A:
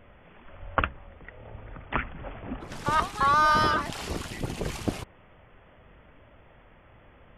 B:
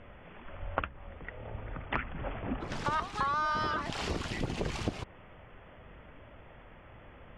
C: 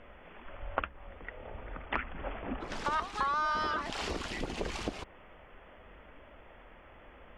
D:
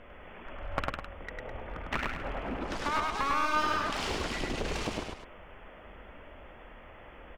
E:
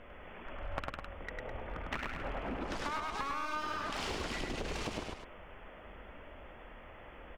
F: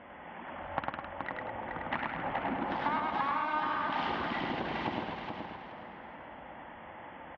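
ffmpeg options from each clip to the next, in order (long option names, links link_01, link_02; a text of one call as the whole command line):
ffmpeg -i in.wav -af "lowpass=5900,acompressor=threshold=-31dB:ratio=6,volume=2dB" out.wav
ffmpeg -i in.wav -af "equalizer=frequency=120:width=1.3:gain=-12.5" out.wav
ffmpeg -i in.wav -af "aeval=exprs='clip(val(0),-1,0.0168)':channel_layout=same,aecho=1:1:102|207:0.794|0.316,volume=2dB" out.wav
ffmpeg -i in.wav -af "acompressor=threshold=-32dB:ratio=6,volume=-1.5dB" out.wav
ffmpeg -i in.wav -af "highpass=150,equalizer=frequency=430:width_type=q:width=4:gain=-10,equalizer=frequency=600:width_type=q:width=4:gain=-3,equalizer=frequency=850:width_type=q:width=4:gain=6,equalizer=frequency=1300:width_type=q:width=4:gain=-5,equalizer=frequency=2500:width_type=q:width=4:gain=-7,lowpass=frequency=3000:width=0.5412,lowpass=frequency=3000:width=1.3066,aecho=1:1:425|850|1275|1700:0.531|0.143|0.0387|0.0104,volume=6dB" out.wav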